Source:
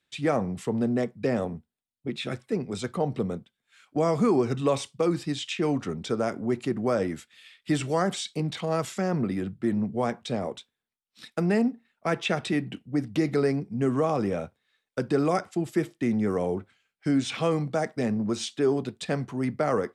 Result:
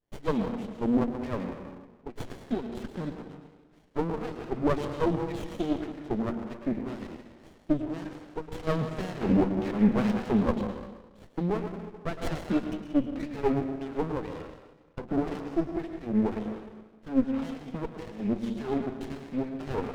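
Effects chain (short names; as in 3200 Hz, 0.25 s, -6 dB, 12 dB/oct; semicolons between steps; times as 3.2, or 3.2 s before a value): 8.67–10.56 sample leveller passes 3; wah 1.9 Hz 220–3400 Hz, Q 3.4; plate-style reverb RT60 1.3 s, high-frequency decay 0.8×, pre-delay 95 ms, DRR 5.5 dB; running maximum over 33 samples; gain +5 dB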